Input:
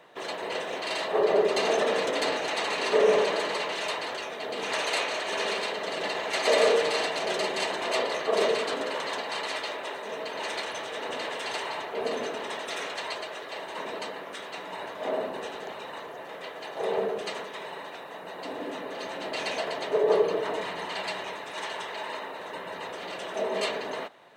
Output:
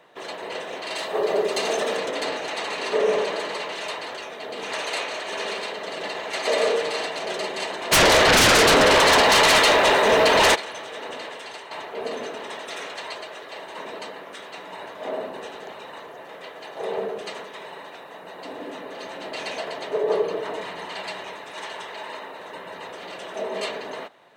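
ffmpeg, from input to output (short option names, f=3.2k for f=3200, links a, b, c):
-filter_complex "[0:a]asettb=1/sr,asplit=3[a][b][c];[a]atrim=end=0.964[d];[b]atrim=start=0.96:end=1.97,asetpts=PTS-STARTPTS,afade=t=in:d=0.004:c=qsin,afade=t=out:st=1.006:d=0.004:c=qsin,highshelf=f=5.8k:g=10[e];[c]atrim=start=1.966[f];[d][e]acrossfade=d=0.004:c1=hsin:c2=qsin[g];[g][f]acrossfade=d=0.004:c1=qsin:c2=hsin,asplit=3[h][i][j];[h]afade=t=out:st=7.91:d=0.02[k];[i]aeval=exprs='0.251*sin(PI/2*7.08*val(0)/0.251)':c=same,afade=t=in:st=7.91:d=0.02,afade=t=out:st=10.54:d=0.02[l];[j]afade=t=in:st=10.54:d=0.02[m];[k][l][m]amix=inputs=3:normalize=0,asplit=2[n][o];[n]atrim=end=11.71,asetpts=PTS-STARTPTS,afade=t=out:st=11.06:d=0.65:silence=0.375837[p];[o]atrim=start=11.71,asetpts=PTS-STARTPTS,afade=t=in:d=0.004:c=hsin:silence=0.375837[q];[p][q]concat=n=2:v=0:a=1"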